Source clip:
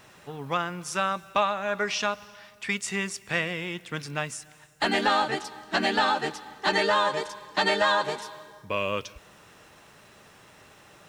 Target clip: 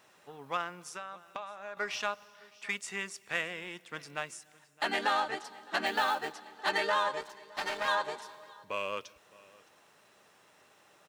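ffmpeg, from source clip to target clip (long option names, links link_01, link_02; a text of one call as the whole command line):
ffmpeg -i in.wav -filter_complex "[0:a]asettb=1/sr,asplit=3[link_01][link_02][link_03];[link_01]atrim=end=7.214[link_04];[link_02]atrim=start=7.21:end=7.88,asetpts=PTS-STARTPTS,afade=type=in:duration=0.004:curve=qsin,afade=type=out:start_time=0.666:duration=0.004:curve=qsin,aeval=exprs='max(val(0),0)':channel_layout=same[link_05];[link_03]atrim=start=7.876[link_06];[link_04][link_05]acrossfade=duration=0.004:curve1=hsin:curve2=qsin[link_07];[link_07][link_06]acrossfade=duration=0.004:curve1=qsin:curve2=hsin,highpass=frequency=660:poles=1,asettb=1/sr,asplit=3[link_08][link_09][link_10];[link_08]atrim=end=0.884[link_11];[link_09]atrim=start=0.88:end=1.77,asetpts=PTS-STARTPTS,afade=type=in:duration=0.004:curve=qsin,afade=type=out:start_time=0.886:duration=0.004:curve=qsin,acompressor=threshold=-35dB:ratio=4[link_12];[link_10]atrim=start=1.766[link_13];[link_11][link_12]acrossfade=duration=0.004:curve1=hsin:curve2=qsin[link_14];[link_14][link_13]acrossfade=duration=0.004:curve1=qsin:curve2=hsin,asplit=2[link_15][link_16];[link_16]aecho=0:1:614:0.0841[link_17];[link_15][link_17]amix=inputs=2:normalize=0,asettb=1/sr,asplit=3[link_18][link_19][link_20];[link_18]atrim=end=5.864[link_21];[link_19]atrim=start=5.86:end=6.33,asetpts=PTS-STARTPTS,afade=type=in:duration=0.004:curve=qsin,afade=type=out:start_time=0.466:duration=0.004:curve=qsin,acrusher=bits=4:mode=log:mix=0:aa=0.000001[link_22];[link_20]atrim=start=6.326[link_23];[link_21][link_22]acrossfade=duration=0.004:curve1=hsin:curve2=qsin[link_24];[link_24][link_23]acrossfade=duration=0.004:curve1=qsin:curve2=hsin,asplit=2[link_25][link_26];[link_26]adynamicsmooth=sensitivity=3:basefreq=1200,volume=-2.5dB[link_27];[link_25][link_27]amix=inputs=2:normalize=0,volume=-8.5dB" out.wav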